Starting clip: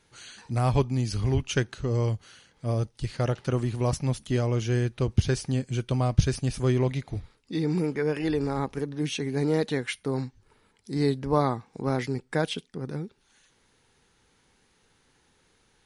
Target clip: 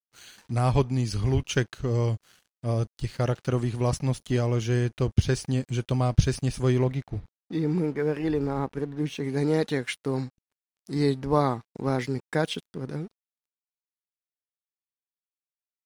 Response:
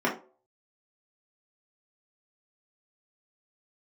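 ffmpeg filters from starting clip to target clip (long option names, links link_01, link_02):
-filter_complex "[0:a]asettb=1/sr,asplit=3[link_01][link_02][link_03];[link_01]atrim=end=6.844[link_04];[link_02]atrim=start=6.84:end=9.24,asetpts=PTS-STARTPTS,afade=type=in:duration=0.004:curve=qsin,afade=type=out:start_time=2.396:duration=0.004:curve=qsin,highshelf=frequency=2700:gain=-10.5[link_05];[link_03]atrim=start=9.236[link_06];[link_04][link_05]acrossfade=duration=0.004:curve1=hsin:curve2=qsin[link_07];[link_07][link_06]acrossfade=duration=0.004:curve1=qsin:curve2=hsin,aeval=exprs='sgn(val(0))*max(abs(val(0))-0.00266,0)':channel_layout=same,volume=1dB"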